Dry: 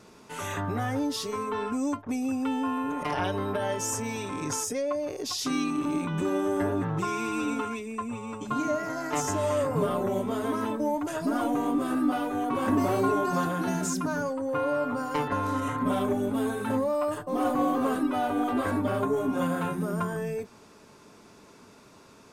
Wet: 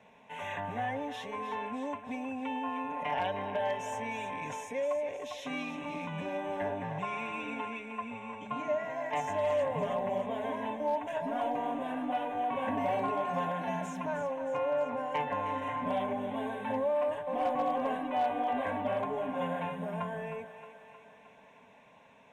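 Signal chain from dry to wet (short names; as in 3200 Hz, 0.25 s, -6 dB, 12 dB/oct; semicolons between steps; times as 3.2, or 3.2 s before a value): three-band isolator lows -14 dB, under 190 Hz, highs -22 dB, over 4700 Hz; fixed phaser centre 1300 Hz, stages 6; on a send: thinning echo 0.311 s, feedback 62%, high-pass 420 Hz, level -10 dB; on the sum: hard clip -23 dBFS, distortion -32 dB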